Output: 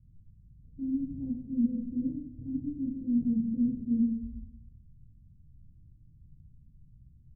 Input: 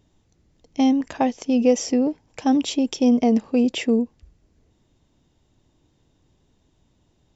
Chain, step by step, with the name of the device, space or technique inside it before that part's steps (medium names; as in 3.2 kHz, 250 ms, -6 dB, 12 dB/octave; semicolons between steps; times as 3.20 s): club heard from the street (peak limiter -15.5 dBFS, peak gain reduction 8.5 dB; low-pass 150 Hz 24 dB/octave; reverberation RT60 0.75 s, pre-delay 20 ms, DRR -5.5 dB); 2.11–2.94 s: dynamic bell 530 Hz, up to -4 dB, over -56 dBFS, Q 1.8; trim +3.5 dB